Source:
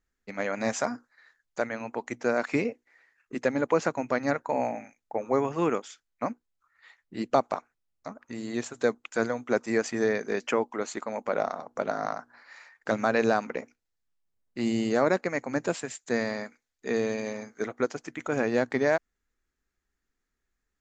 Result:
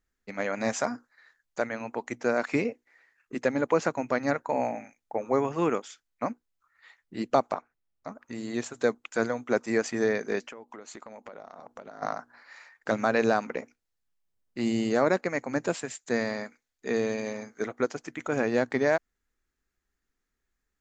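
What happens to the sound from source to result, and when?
7.53–8.08 LPF 2500 Hz 6 dB/oct
10.47–12.02 compressor 20:1, threshold -39 dBFS

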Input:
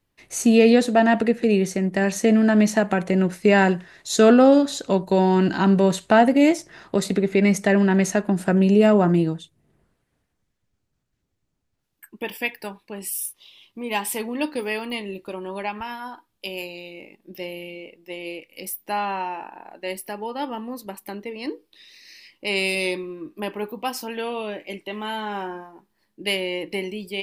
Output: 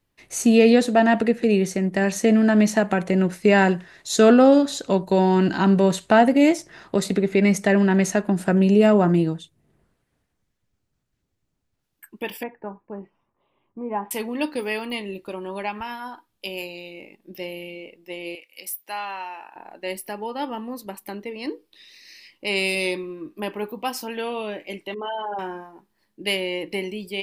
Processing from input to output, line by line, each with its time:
12.43–14.11 LPF 1300 Hz 24 dB/oct
18.35–19.56 HPF 1400 Hz 6 dB/oct
24.94–25.39 formant sharpening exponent 3

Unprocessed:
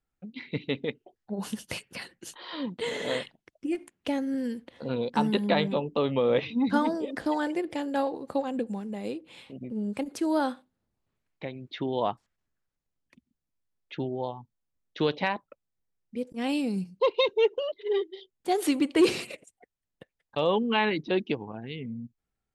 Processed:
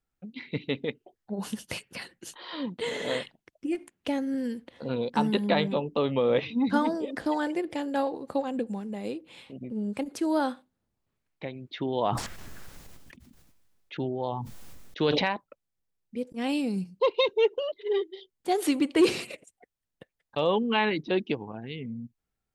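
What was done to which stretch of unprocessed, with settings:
11.78–15.24 sustainer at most 24 dB/s

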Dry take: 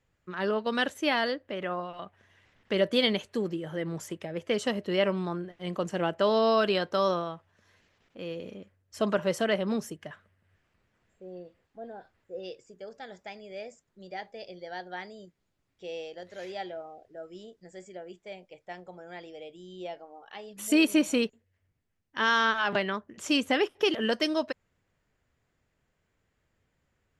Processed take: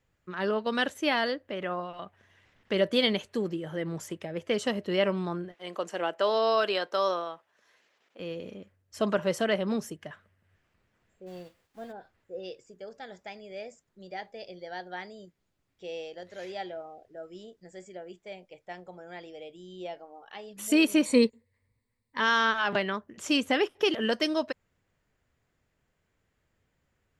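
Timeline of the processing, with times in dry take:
5.54–8.2 HPF 410 Hz
11.26–11.91 spectral whitening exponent 0.6
21.05–22.2 ripple EQ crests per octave 0.96, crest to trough 13 dB

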